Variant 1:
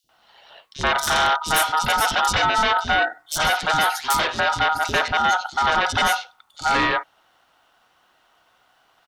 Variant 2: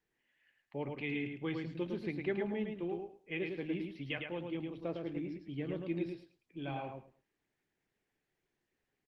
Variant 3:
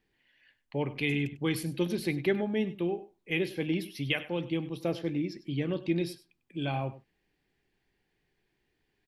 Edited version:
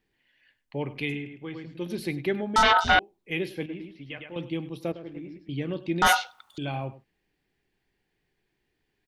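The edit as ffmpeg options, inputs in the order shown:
-filter_complex "[1:a]asplit=3[s0][s1][s2];[0:a]asplit=2[s3][s4];[2:a]asplit=6[s5][s6][s7][s8][s9][s10];[s5]atrim=end=1.28[s11];[s0]atrim=start=1.04:end=1.97[s12];[s6]atrim=start=1.73:end=2.562[s13];[s3]atrim=start=2.558:end=2.992[s14];[s7]atrim=start=2.988:end=3.662[s15];[s1]atrim=start=3.658:end=4.362[s16];[s8]atrim=start=4.358:end=4.922[s17];[s2]atrim=start=4.918:end=5.492[s18];[s9]atrim=start=5.488:end=6.022[s19];[s4]atrim=start=6.018:end=6.582[s20];[s10]atrim=start=6.578[s21];[s11][s12]acrossfade=d=0.24:c1=tri:c2=tri[s22];[s22][s13]acrossfade=d=0.24:c1=tri:c2=tri[s23];[s23][s14]acrossfade=d=0.004:c1=hsin:c2=hsin[s24];[s24][s15]acrossfade=d=0.004:c1=hsin:c2=hsin[s25];[s25][s16]acrossfade=d=0.004:c1=hsin:c2=hsin[s26];[s26][s17]acrossfade=d=0.004:c1=hsin:c2=hsin[s27];[s27][s18]acrossfade=d=0.004:c1=hsin:c2=hsin[s28];[s28][s19]acrossfade=d=0.004:c1=hsin:c2=hsin[s29];[s29][s20]acrossfade=d=0.004:c1=hsin:c2=hsin[s30];[s30][s21]acrossfade=d=0.004:c1=hsin:c2=hsin"

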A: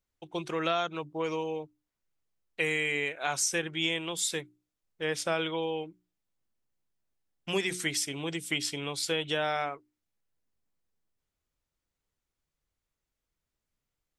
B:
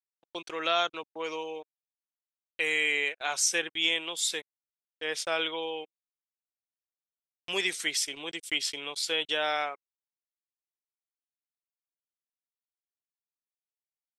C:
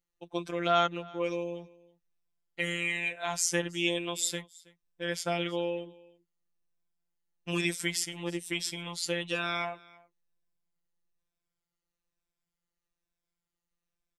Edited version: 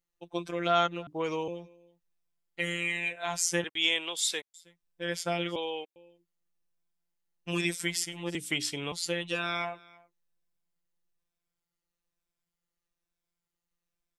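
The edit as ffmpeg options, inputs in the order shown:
-filter_complex "[0:a]asplit=2[s0][s1];[1:a]asplit=2[s2][s3];[2:a]asplit=5[s4][s5][s6][s7][s8];[s4]atrim=end=1.072[s9];[s0]atrim=start=1.068:end=1.482[s10];[s5]atrim=start=1.478:end=3.642[s11];[s2]atrim=start=3.638:end=4.542[s12];[s6]atrim=start=4.538:end=5.562[s13];[s3]atrim=start=5.558:end=5.962[s14];[s7]atrim=start=5.958:end=8.352[s15];[s1]atrim=start=8.348:end=8.922[s16];[s8]atrim=start=8.918[s17];[s9][s10]acrossfade=d=0.004:c1=hsin:c2=hsin[s18];[s18][s11]acrossfade=d=0.004:c1=hsin:c2=hsin[s19];[s19][s12]acrossfade=d=0.004:c1=hsin:c2=hsin[s20];[s20][s13]acrossfade=d=0.004:c1=hsin:c2=hsin[s21];[s21][s14]acrossfade=d=0.004:c1=hsin:c2=hsin[s22];[s22][s15]acrossfade=d=0.004:c1=hsin:c2=hsin[s23];[s23][s16]acrossfade=d=0.004:c1=hsin:c2=hsin[s24];[s24][s17]acrossfade=d=0.004:c1=hsin:c2=hsin"

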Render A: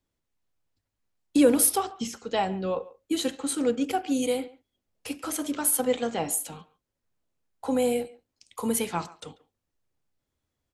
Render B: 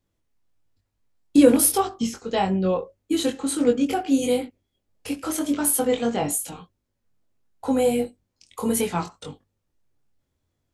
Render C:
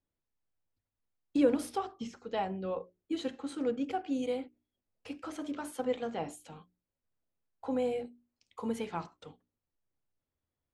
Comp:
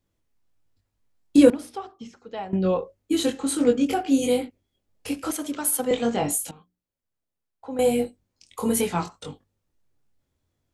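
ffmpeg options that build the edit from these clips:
-filter_complex "[2:a]asplit=2[s0][s1];[1:a]asplit=4[s2][s3][s4][s5];[s2]atrim=end=1.502[s6];[s0]atrim=start=1.498:end=2.532[s7];[s3]atrim=start=2.528:end=5.312[s8];[0:a]atrim=start=5.308:end=5.912[s9];[s4]atrim=start=5.908:end=6.512[s10];[s1]atrim=start=6.508:end=7.792[s11];[s5]atrim=start=7.788[s12];[s6][s7]acrossfade=d=0.004:c1=hsin:c2=hsin[s13];[s13][s8]acrossfade=d=0.004:c1=hsin:c2=hsin[s14];[s14][s9]acrossfade=d=0.004:c1=hsin:c2=hsin[s15];[s15][s10]acrossfade=d=0.004:c1=hsin:c2=hsin[s16];[s16][s11]acrossfade=d=0.004:c1=hsin:c2=hsin[s17];[s17][s12]acrossfade=d=0.004:c1=hsin:c2=hsin"

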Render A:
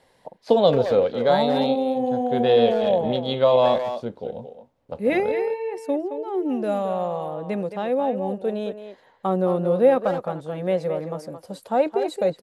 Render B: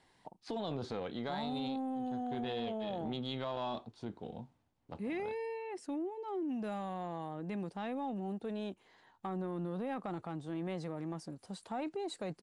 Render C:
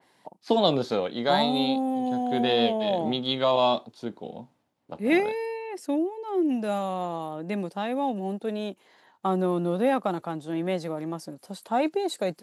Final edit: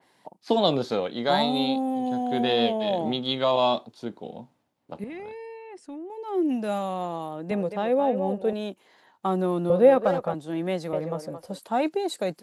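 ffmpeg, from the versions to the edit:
-filter_complex "[0:a]asplit=3[s0][s1][s2];[2:a]asplit=5[s3][s4][s5][s6][s7];[s3]atrim=end=5.042[s8];[1:a]atrim=start=5.038:end=6.102[s9];[s4]atrim=start=6.098:end=7.512[s10];[s0]atrim=start=7.508:end=8.532[s11];[s5]atrim=start=8.528:end=9.702[s12];[s1]atrim=start=9.698:end=10.342[s13];[s6]atrim=start=10.338:end=10.932[s14];[s2]atrim=start=10.928:end=11.592[s15];[s7]atrim=start=11.588[s16];[s8][s9]acrossfade=d=0.004:c1=hsin:c2=hsin[s17];[s17][s10]acrossfade=d=0.004:c1=hsin:c2=hsin[s18];[s18][s11]acrossfade=d=0.004:c1=hsin:c2=hsin[s19];[s19][s12]acrossfade=d=0.004:c1=hsin:c2=hsin[s20];[s20][s13]acrossfade=d=0.004:c1=hsin:c2=hsin[s21];[s21][s14]acrossfade=d=0.004:c1=hsin:c2=hsin[s22];[s22][s15]acrossfade=d=0.004:c1=hsin:c2=hsin[s23];[s23][s16]acrossfade=d=0.004:c1=hsin:c2=hsin"

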